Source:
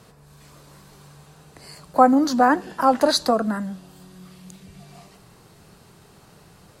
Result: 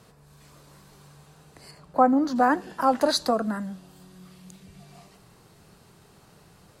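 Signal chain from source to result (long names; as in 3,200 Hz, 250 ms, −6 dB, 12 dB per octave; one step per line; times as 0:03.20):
0:01.71–0:02.36: high-shelf EQ 3,400 Hz −11.5 dB
level −4 dB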